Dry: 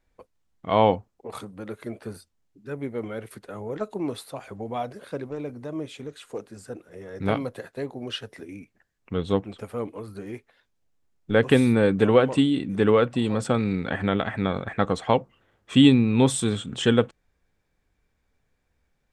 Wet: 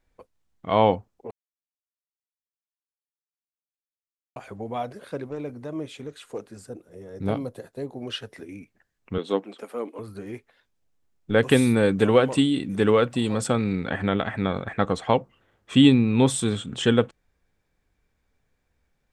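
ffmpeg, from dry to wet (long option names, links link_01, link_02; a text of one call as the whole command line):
ffmpeg -i in.wav -filter_complex "[0:a]asettb=1/sr,asplit=3[link_01][link_02][link_03];[link_01]atrim=end=6.664[link_04];[link_02]atrim=start=6.66:end=7.92,asetpts=PTS-STARTPTS,afade=type=in:duration=0.004:curve=qsin,afade=type=out:start_time=1.256:duration=0.004:curve=qsin,equalizer=frequency=1900:width_type=o:width=2.1:gain=-9.5[link_05];[link_03]atrim=start=7.916[link_06];[link_04][link_05]acrossfade=duration=0.004:curve1=hsin:curve2=qsin[link_07];[link_07][link_06]acrossfade=duration=0.004:curve1=qsin:curve2=hsin,asettb=1/sr,asplit=3[link_08][link_09][link_10];[link_08]atrim=end=9.184[link_11];[link_09]atrim=start=9.18:end=9.99,asetpts=PTS-STARTPTS,afade=type=in:duration=0.004:curve=qsin,afade=type=out:start_time=0.806:duration=0.004:curve=qsin,highpass=frequency=240:width=0.5412,highpass=frequency=240:width=1.3066[link_12];[link_10]atrim=start=9.986[link_13];[link_11][link_12]acrossfade=duration=0.004:curve1=hsin:curve2=qsin[link_14];[link_14][link_13]acrossfade=duration=0.004:curve1=qsin:curve2=hsin,asettb=1/sr,asplit=3[link_15][link_16][link_17];[link_15]atrim=end=11.384[link_18];[link_16]atrim=start=11.38:end=13.54,asetpts=PTS-STARTPTS,afade=type=in:duration=0.004:curve=qsin,afade=type=out:start_time=2.156:duration=0.004:curve=qsin,aemphasis=mode=production:type=cd[link_19];[link_17]atrim=start=13.536[link_20];[link_18][link_19]acrossfade=duration=0.004:curve1=hsin:curve2=qsin[link_21];[link_21][link_20]acrossfade=duration=0.004:curve1=qsin:curve2=hsin,asplit=3[link_22][link_23][link_24];[link_22]atrim=end=1.31,asetpts=PTS-STARTPTS,afade=type=out:start_time=1.306:duration=0.004:curve=hsin[link_25];[link_23]atrim=start=1.31:end=4.36,asetpts=PTS-STARTPTS,volume=0[link_26];[link_24]atrim=start=4.36,asetpts=PTS-STARTPTS,afade=type=in:duration=0.004:curve=hsin[link_27];[link_25][link_26][link_27]concat=n=3:v=0:a=1" out.wav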